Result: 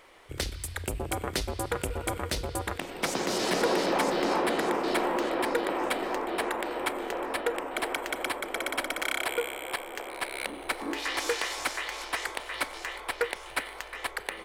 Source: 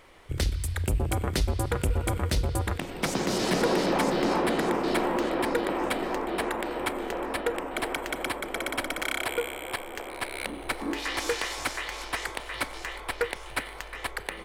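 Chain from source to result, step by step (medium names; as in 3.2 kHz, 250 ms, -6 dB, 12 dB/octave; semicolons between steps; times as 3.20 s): tone controls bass -10 dB, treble 0 dB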